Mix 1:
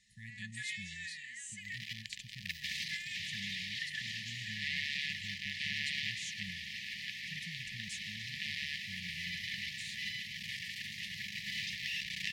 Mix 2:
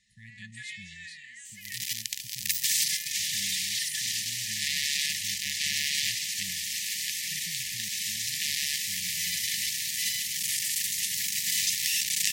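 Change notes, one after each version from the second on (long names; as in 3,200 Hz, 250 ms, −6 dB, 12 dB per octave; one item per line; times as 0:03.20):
second sound: remove high-frequency loss of the air 350 metres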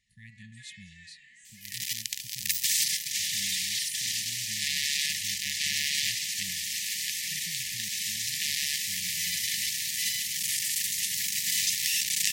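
first sound −11.0 dB
reverb: on, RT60 1.6 s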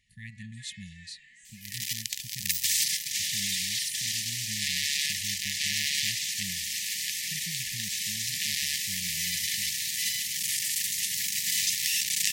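speech +6.5 dB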